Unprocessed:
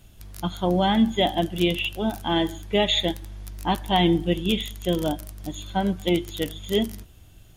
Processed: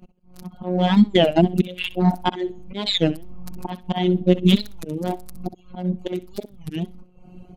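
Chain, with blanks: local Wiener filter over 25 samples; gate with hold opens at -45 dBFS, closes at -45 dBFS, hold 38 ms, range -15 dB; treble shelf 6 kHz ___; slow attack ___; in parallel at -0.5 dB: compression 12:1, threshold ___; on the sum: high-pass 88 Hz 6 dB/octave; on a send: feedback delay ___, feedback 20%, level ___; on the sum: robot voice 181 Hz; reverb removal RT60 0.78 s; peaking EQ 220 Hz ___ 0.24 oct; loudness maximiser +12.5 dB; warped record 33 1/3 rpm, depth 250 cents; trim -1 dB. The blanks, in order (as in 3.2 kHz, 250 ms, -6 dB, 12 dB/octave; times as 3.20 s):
-7 dB, 626 ms, -37 dBFS, 64 ms, -7 dB, +6.5 dB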